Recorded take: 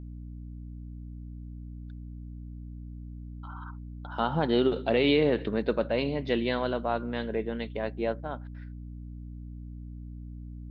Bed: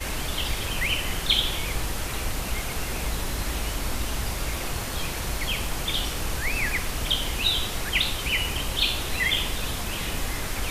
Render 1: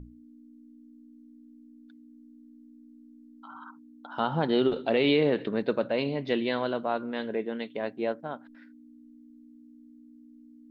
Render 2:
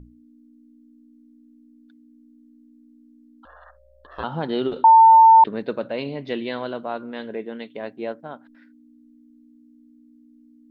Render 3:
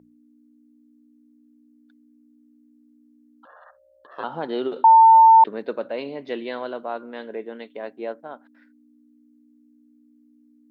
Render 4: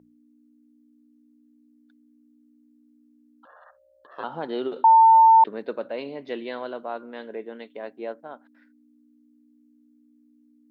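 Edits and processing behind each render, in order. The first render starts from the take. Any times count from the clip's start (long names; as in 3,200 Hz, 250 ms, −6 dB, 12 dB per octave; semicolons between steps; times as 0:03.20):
mains-hum notches 60/120/180 Hz
0:03.45–0:04.24: ring modulation 300 Hz; 0:04.84–0:05.44: beep over 898 Hz −7 dBFS
high-pass filter 300 Hz 12 dB per octave; parametric band 3,500 Hz −4.5 dB 1.7 octaves
level −2.5 dB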